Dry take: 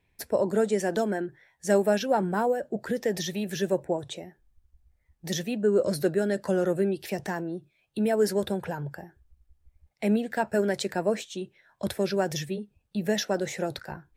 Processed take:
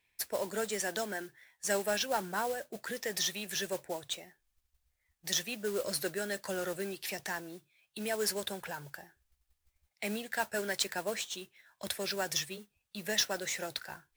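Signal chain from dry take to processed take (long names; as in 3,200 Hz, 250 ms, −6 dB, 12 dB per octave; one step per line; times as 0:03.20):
tilt shelving filter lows −9.5 dB, about 860 Hz
noise that follows the level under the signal 13 dB
level −6.5 dB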